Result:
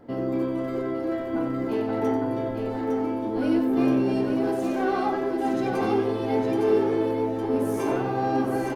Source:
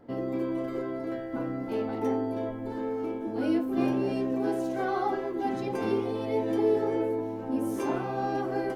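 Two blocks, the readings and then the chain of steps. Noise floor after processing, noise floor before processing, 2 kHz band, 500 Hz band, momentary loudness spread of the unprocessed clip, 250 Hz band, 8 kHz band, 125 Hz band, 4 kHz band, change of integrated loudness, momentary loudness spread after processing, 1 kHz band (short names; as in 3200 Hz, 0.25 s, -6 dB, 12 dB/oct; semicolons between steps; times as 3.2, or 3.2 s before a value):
-30 dBFS, -36 dBFS, +4.5 dB, +4.5 dB, 7 LU, +5.0 dB, n/a, +5.5 dB, +4.5 dB, +4.5 dB, 6 LU, +4.5 dB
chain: in parallel at -4 dB: soft clip -29 dBFS, distortion -10 dB; on the sum: tapped delay 92/858 ms -8.5/-4.5 dB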